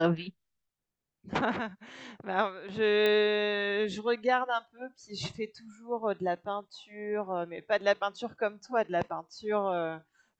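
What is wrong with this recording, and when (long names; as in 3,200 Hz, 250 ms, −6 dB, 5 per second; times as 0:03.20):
0:03.06: click −16 dBFS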